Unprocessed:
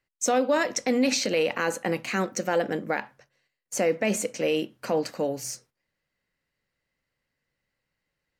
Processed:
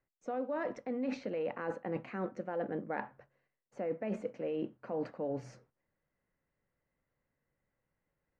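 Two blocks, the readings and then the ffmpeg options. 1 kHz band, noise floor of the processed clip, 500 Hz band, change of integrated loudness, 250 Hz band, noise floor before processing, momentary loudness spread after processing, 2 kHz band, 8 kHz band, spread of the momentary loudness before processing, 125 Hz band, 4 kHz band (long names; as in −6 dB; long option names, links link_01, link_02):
−12.0 dB, below −85 dBFS, −11.0 dB, −12.0 dB, −10.5 dB, −83 dBFS, 4 LU, −16.5 dB, below −35 dB, 8 LU, −8.5 dB, below −25 dB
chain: -af "lowpass=1300,areverse,acompressor=threshold=-34dB:ratio=6,areverse"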